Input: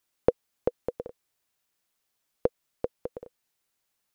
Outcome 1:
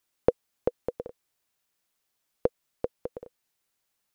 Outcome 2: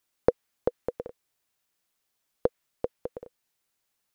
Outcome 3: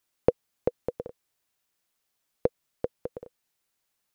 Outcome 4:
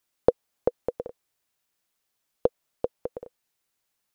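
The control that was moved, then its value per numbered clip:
dynamic equaliser, frequency: 8,700, 1,800, 130, 670 Hertz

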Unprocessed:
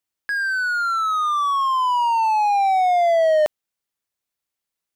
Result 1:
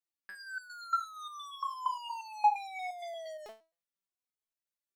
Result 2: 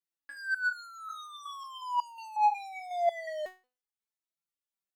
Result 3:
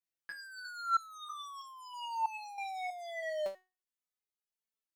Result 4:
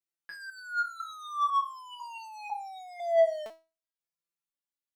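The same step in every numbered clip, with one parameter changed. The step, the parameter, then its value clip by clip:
step-sequenced resonator, speed: 8.6, 5.5, 3.1, 2 Hertz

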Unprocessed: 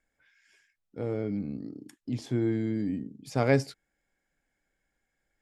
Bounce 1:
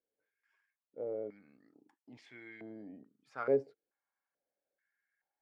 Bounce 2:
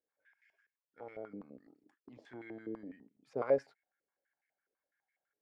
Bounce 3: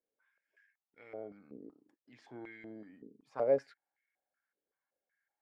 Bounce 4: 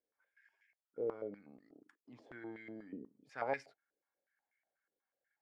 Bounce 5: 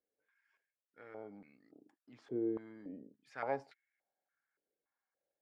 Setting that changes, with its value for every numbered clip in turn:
band-pass on a step sequencer, speed: 2.3, 12, 5.3, 8.2, 3.5 Hertz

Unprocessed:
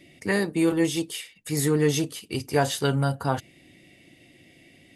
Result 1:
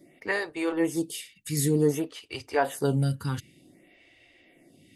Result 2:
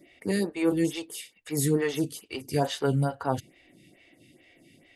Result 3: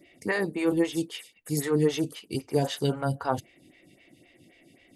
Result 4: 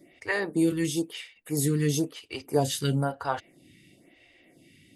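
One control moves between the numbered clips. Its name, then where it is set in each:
phaser with staggered stages, speed: 0.54, 2.3, 3.8, 1 Hertz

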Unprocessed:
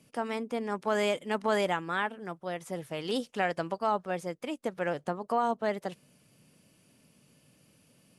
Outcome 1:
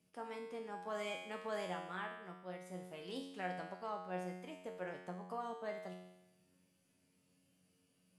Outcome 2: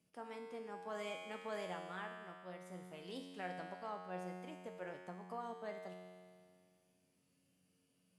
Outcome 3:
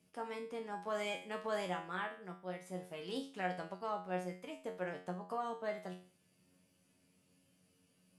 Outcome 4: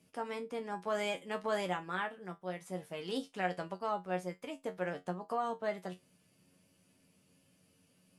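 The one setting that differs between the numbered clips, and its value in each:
tuned comb filter, decay: 0.95, 2, 0.41, 0.17 seconds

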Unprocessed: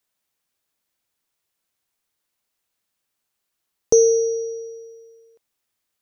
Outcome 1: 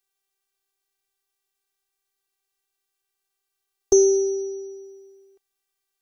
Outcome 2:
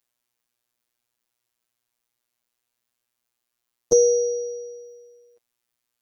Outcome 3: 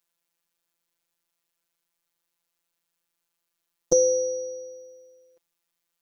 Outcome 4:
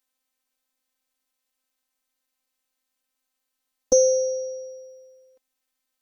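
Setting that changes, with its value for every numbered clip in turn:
phases set to zero, frequency: 390, 120, 170, 260 Hertz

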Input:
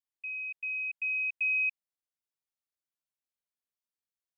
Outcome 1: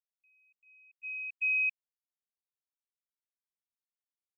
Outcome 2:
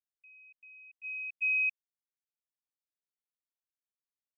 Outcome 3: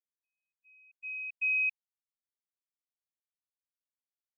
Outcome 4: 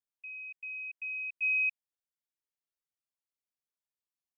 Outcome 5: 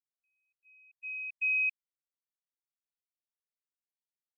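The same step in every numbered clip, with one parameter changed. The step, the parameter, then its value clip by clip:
noise gate, range: −31, −19, −56, −6, −44 decibels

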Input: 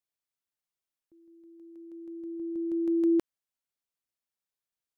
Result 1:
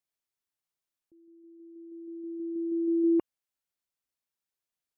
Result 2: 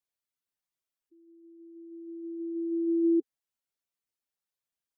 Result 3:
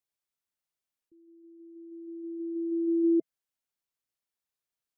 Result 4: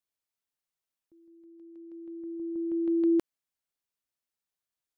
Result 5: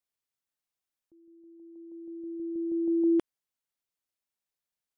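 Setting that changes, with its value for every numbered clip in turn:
gate on every frequency bin, under each frame's peak: −35, −10, −20, −60, −45 decibels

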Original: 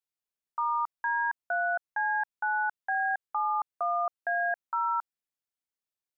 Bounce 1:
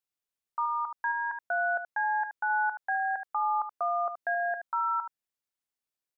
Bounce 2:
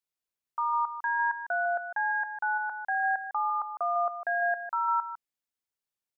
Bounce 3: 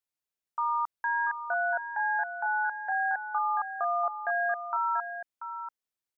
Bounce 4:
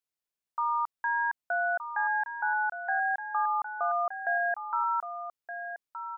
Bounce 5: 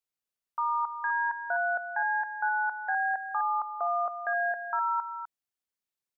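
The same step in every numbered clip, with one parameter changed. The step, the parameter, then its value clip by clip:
single-tap delay, delay time: 75, 152, 686, 1,220, 252 milliseconds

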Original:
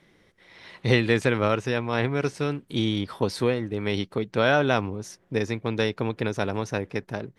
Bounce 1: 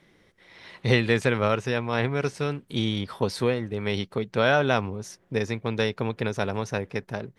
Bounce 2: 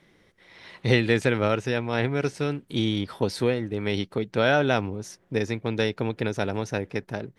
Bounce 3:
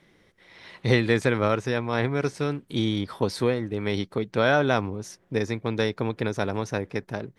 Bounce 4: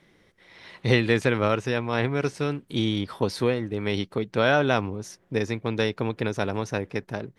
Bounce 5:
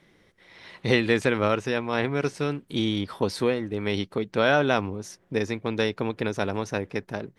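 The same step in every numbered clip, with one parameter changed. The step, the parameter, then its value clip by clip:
dynamic equaliser, frequency: 310, 1,100, 2,800, 7,900, 120 Hertz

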